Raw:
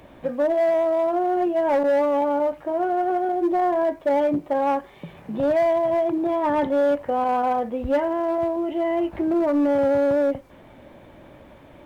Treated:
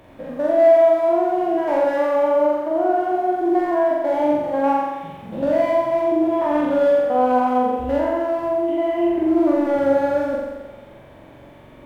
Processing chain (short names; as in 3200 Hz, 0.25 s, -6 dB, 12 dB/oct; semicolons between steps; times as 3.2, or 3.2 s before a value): stepped spectrum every 0.1 s; flutter echo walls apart 7.5 m, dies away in 1.2 s